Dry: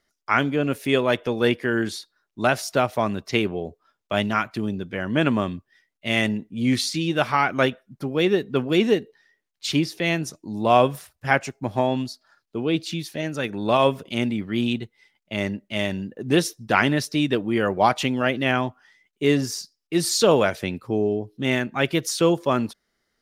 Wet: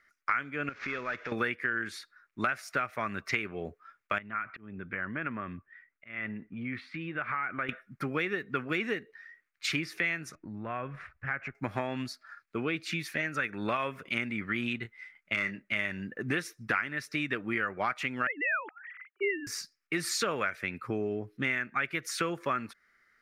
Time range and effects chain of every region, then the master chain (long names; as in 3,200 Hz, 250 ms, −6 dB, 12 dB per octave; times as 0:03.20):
0:00.69–0:01.32: variable-slope delta modulation 32 kbit/s + downward compressor 3 to 1, threshold −36 dBFS
0:04.18–0:07.69: downward compressor 3 to 1, threshold −33 dBFS + volume swells 234 ms + high-frequency loss of the air 460 metres
0:10.35–0:11.55: low-pass filter 2,200 Hz + low-shelf EQ 140 Hz +11.5 dB + downward compressor 2.5 to 1, threshold −38 dBFS
0:14.82–0:15.64: dynamic equaliser 4,000 Hz, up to +5 dB, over −43 dBFS, Q 0.79 + gain into a clipping stage and back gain 13.5 dB + double-tracking delay 26 ms −10 dB
0:18.27–0:19.47: three sine waves on the formant tracks + parametric band 2,300 Hz −3.5 dB 0.39 octaves
whole clip: flat-topped bell 1,700 Hz +15.5 dB 1.3 octaves; downward compressor 6 to 1, threshold −24 dBFS; level −4.5 dB